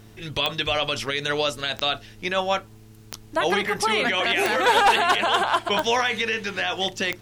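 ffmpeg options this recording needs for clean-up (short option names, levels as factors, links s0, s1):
-af "adeclick=t=4,bandreject=f=108.6:t=h:w=4,bandreject=f=217.2:t=h:w=4,bandreject=f=325.8:t=h:w=4,bandreject=f=434.4:t=h:w=4"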